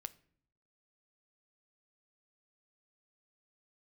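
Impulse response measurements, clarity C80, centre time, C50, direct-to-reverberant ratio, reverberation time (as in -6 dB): 24.0 dB, 2 ms, 20.5 dB, 12.0 dB, 0.60 s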